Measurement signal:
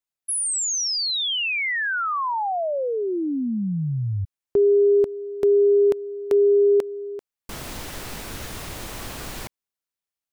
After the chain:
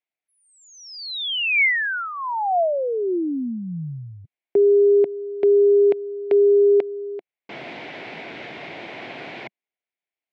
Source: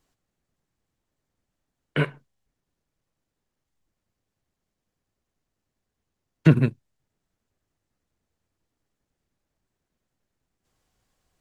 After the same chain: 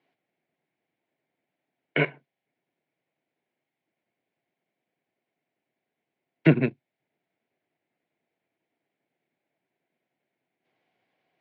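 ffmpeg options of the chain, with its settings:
ffmpeg -i in.wav -af "highpass=frequency=160:width=0.5412,highpass=frequency=160:width=1.3066,equalizer=frequency=200:width_type=q:width=4:gain=-5,equalizer=frequency=360:width_type=q:width=4:gain=3,equalizer=frequency=690:width_type=q:width=4:gain=7,equalizer=frequency=1200:width_type=q:width=4:gain=-8,equalizer=frequency=2200:width_type=q:width=4:gain=9,lowpass=frequency=3500:width=0.5412,lowpass=frequency=3500:width=1.3066" out.wav

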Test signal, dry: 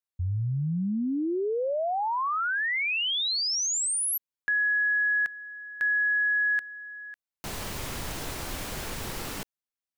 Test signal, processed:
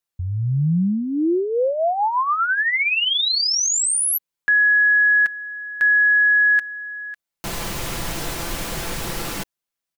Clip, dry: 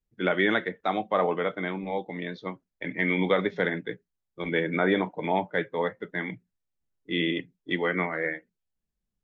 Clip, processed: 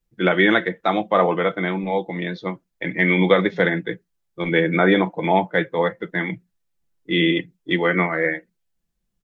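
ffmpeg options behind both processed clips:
ffmpeg -i in.wav -af "aecho=1:1:5.9:0.4,volume=7dB" out.wav

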